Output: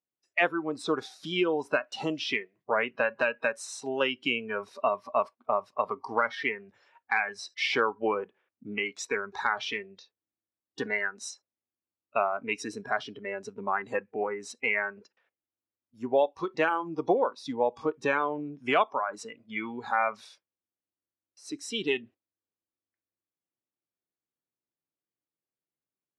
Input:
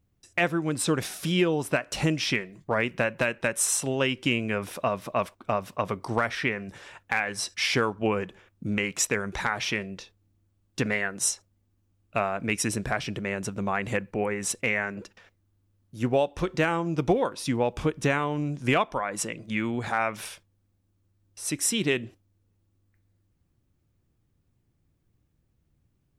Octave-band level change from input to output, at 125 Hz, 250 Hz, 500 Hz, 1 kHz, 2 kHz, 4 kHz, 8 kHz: -16.5, -6.5, -1.0, +0.5, -1.5, -3.5, -15.0 dB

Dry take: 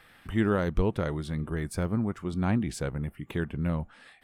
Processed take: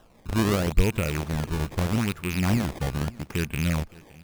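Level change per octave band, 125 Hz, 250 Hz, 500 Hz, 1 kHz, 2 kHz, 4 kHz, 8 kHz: +4.0, +2.0, +1.0, +3.5, +5.5, +11.0, +9.0 dB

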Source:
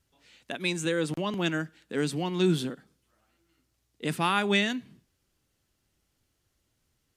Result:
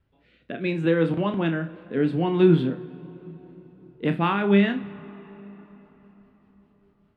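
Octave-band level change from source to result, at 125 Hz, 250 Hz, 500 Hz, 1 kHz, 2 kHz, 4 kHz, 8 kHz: +7.5 dB, +7.5 dB, +7.0 dB, +2.5 dB, 0.0 dB, -5.5 dB, under -25 dB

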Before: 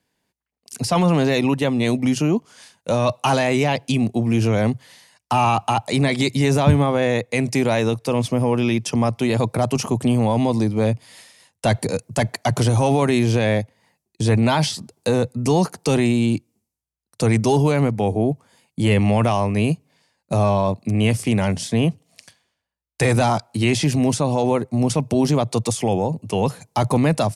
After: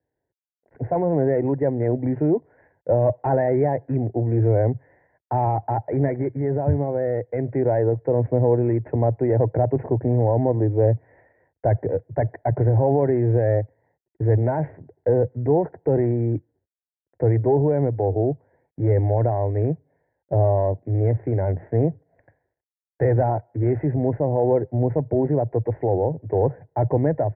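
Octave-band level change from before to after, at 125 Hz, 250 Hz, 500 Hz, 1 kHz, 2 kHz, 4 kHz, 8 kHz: -1.0 dB, -6.0 dB, +1.0 dB, -5.0 dB, -15.0 dB, under -40 dB, under -40 dB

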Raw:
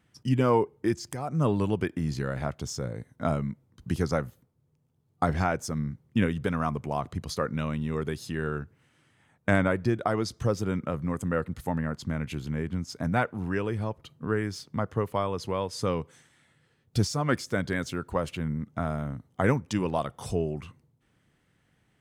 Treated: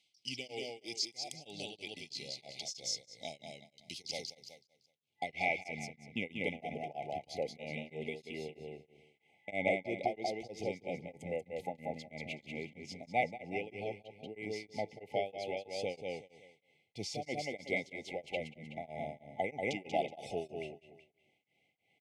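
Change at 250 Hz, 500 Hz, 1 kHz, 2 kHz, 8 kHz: -16.0, -8.5, -8.5, -5.5, -5.0 dB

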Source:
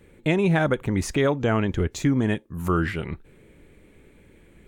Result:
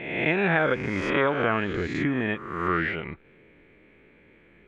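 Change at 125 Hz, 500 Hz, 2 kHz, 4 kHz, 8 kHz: -7.5 dB, -1.5 dB, +4.5 dB, -1.0 dB, under -15 dB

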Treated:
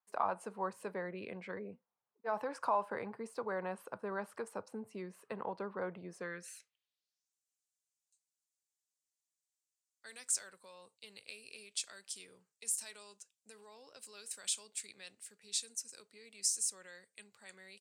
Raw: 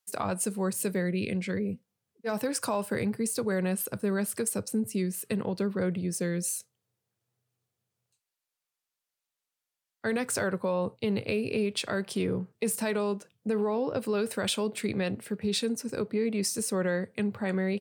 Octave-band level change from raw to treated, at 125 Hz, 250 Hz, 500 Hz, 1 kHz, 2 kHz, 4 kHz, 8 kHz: -21.5, -20.5, -13.5, -2.5, -11.0, -8.5, -4.5 dB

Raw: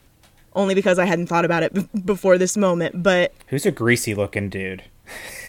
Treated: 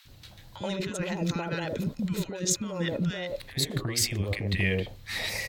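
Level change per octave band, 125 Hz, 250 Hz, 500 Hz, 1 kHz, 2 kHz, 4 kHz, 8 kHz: -4.5, -10.0, -15.5, -16.0, -10.0, -1.0, -2.0 dB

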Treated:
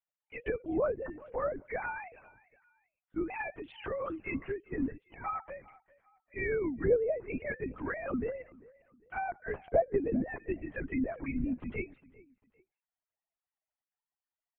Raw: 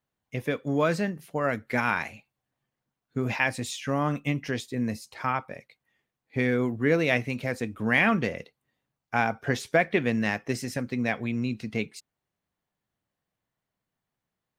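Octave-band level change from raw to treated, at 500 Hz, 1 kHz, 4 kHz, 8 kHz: -3.5 dB, -9.0 dB, under -20 dB, under -35 dB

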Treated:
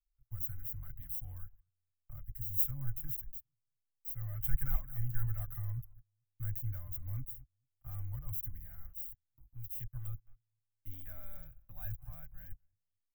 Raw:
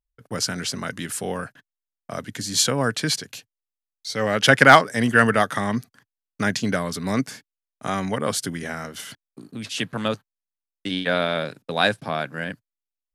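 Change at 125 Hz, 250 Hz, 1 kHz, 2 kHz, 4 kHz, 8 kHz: -10.0 dB, -31.5 dB, -39.0 dB, -39.0 dB, under -40 dB, -31.0 dB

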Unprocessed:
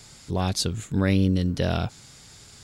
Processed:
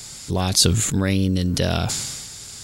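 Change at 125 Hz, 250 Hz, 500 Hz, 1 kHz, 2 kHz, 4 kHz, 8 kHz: +3.5, +2.0, +3.0, +3.0, +4.0, +10.0, +14.0 dB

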